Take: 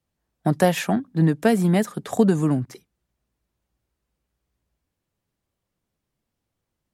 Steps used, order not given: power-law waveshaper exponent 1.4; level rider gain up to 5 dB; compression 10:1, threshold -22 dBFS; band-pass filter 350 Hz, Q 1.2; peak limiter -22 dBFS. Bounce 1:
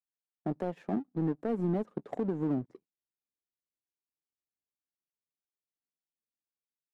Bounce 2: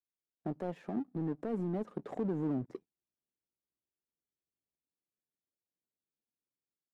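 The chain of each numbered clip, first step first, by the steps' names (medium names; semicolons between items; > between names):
level rider > band-pass filter > power-law waveshaper > compression > peak limiter; compression > level rider > peak limiter > band-pass filter > power-law waveshaper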